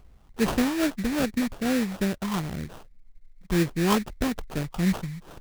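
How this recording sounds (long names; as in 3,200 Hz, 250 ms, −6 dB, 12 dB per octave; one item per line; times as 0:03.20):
phaser sweep stages 12, 2.5 Hz, lowest notch 550–1,400 Hz
aliases and images of a low sample rate 2,100 Hz, jitter 20%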